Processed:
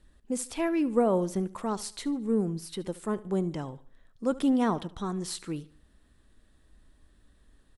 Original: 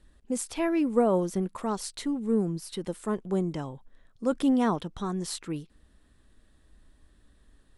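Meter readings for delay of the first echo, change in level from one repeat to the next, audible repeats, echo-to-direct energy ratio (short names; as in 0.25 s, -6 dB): 73 ms, -8.0 dB, 3, -18.5 dB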